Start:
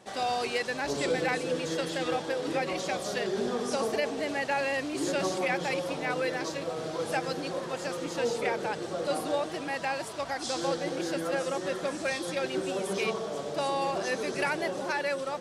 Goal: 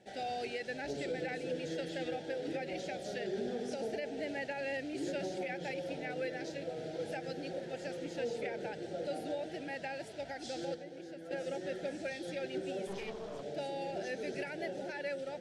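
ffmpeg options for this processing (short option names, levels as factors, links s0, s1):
-filter_complex "[0:a]alimiter=limit=0.0841:level=0:latency=1:release=126,asuperstop=centerf=1100:order=4:qfactor=1.5,asettb=1/sr,asplit=3[s0][s1][s2];[s0]atrim=end=12.874[s3];[s1]atrim=start=12.87:end=13.43,asetpts=PTS-STARTPTS,afade=t=in:d=0.004:c=qsin,afade=t=out:st=0.556:d=0.004:c=qsin,aeval=exprs='clip(val(0),-1,0.0112)':c=same[s4];[s2]atrim=start=13.426[s5];[s3][s4]acrossfade=d=0.004:c1=hsin:c2=qsin[s6];[s6][s5]acrossfade=d=0.004:c1=qsin:c2=hsin,aemphasis=mode=reproduction:type=50kf,asettb=1/sr,asplit=3[s7][s8][s9];[s7]atrim=end=10.744[s10];[s8]atrim=start=10.74:end=11.31,asetpts=PTS-STARTPTS,afade=t=in:d=0.004:c=qsin,afade=t=out:st=0.566:d=0.004:c=qsin,acrossover=split=190|1400[s11][s12][s13];[s11]acompressor=threshold=0.00141:ratio=4[s14];[s12]acompressor=threshold=0.00891:ratio=4[s15];[s13]acompressor=threshold=0.00158:ratio=4[s16];[s14][s15][s16]amix=inputs=3:normalize=0[s17];[s9]atrim=start=11.306[s18];[s10][s17]acrossfade=d=0.004:c1=hsin:c2=qsin[s19];[s19][s18]acrossfade=d=0.004:c1=qsin:c2=hsin,volume=0.501"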